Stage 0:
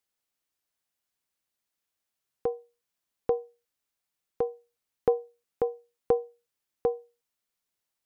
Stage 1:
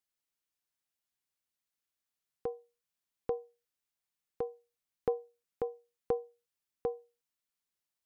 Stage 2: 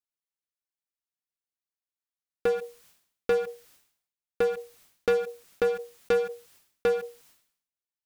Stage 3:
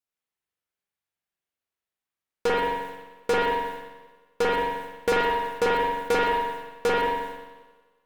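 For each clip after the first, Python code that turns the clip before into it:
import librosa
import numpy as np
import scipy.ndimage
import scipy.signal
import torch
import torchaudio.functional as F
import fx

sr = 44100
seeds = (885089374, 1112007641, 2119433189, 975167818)

y1 = fx.peak_eq(x, sr, hz=580.0, db=-3.0, octaves=1.7)
y1 = F.gain(torch.from_numpy(y1), -5.0).numpy()
y2 = fx.leveller(y1, sr, passes=5)
y2 = fx.sustainer(y2, sr, db_per_s=94.0)
y3 = fx.echo_heads(y2, sr, ms=61, heads='second and third', feedback_pct=53, wet_db=-16.0)
y3 = fx.cheby_harmonics(y3, sr, harmonics=(6, 8), levels_db=(-10, -21), full_scale_db=-18.0)
y3 = fx.rev_spring(y3, sr, rt60_s=1.1, pass_ms=(43,), chirp_ms=75, drr_db=-6.0)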